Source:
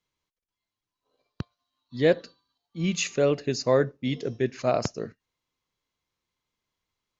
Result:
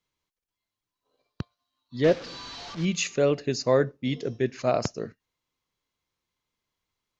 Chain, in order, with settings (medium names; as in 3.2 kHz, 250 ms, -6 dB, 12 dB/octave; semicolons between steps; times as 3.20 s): 2.04–2.85 s: one-bit delta coder 32 kbps, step -34 dBFS